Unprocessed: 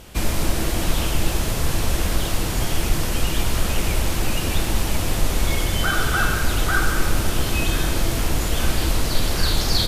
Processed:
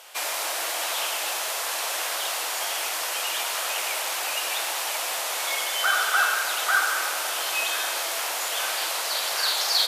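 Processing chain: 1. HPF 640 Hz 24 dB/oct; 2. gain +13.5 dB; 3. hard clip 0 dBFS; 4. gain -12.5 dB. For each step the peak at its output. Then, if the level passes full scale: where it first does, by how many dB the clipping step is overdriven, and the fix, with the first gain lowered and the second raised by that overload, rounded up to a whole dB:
-10.0, +3.5, 0.0, -12.5 dBFS; step 2, 3.5 dB; step 2 +9.5 dB, step 4 -8.5 dB

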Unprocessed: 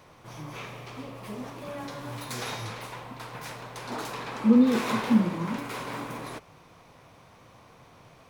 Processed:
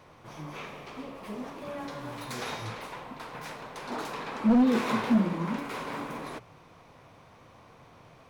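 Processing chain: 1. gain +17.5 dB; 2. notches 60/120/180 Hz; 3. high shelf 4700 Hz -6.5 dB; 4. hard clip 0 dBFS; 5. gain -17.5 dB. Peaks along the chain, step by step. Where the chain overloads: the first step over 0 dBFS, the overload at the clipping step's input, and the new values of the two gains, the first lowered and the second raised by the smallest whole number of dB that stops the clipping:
+9.0, +9.0, +9.0, 0.0, -17.5 dBFS; step 1, 9.0 dB; step 1 +8.5 dB, step 5 -8.5 dB

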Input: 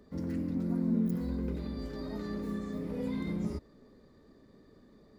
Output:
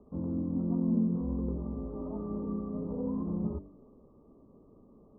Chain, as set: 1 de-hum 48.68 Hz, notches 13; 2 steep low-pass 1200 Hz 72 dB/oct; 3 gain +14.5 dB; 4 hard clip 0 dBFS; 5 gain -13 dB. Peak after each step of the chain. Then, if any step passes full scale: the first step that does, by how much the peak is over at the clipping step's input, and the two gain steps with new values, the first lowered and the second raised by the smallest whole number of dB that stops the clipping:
-18.5, -18.5, -4.0, -4.0, -17.0 dBFS; no overload

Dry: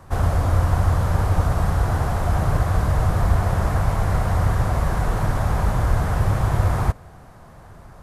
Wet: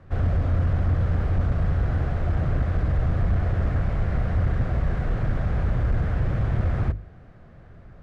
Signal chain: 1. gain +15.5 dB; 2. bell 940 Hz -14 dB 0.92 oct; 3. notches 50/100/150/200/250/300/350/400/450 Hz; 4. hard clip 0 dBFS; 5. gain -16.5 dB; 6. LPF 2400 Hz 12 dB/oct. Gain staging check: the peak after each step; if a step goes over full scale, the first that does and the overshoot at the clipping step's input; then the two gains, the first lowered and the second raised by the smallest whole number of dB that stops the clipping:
+10.5, +10.0, +10.0, 0.0, -16.5, -16.5 dBFS; step 1, 10.0 dB; step 1 +5.5 dB, step 5 -6.5 dB

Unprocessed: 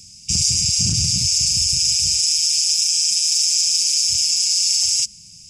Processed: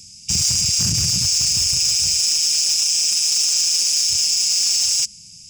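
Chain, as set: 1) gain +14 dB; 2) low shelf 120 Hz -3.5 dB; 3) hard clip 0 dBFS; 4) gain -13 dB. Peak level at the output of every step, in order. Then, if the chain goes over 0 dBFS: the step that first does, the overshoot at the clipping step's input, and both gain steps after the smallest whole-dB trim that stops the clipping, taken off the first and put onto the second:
+7.5, +7.5, 0.0, -13.0 dBFS; step 1, 7.5 dB; step 1 +6 dB, step 4 -5 dB

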